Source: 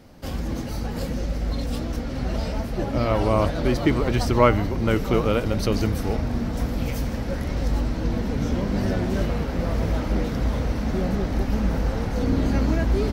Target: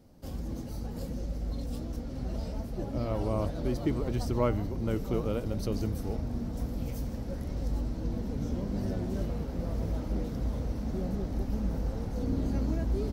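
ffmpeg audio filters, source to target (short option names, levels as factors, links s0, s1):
-af "equalizer=f=2000:w=0.53:g=-10,volume=0.398"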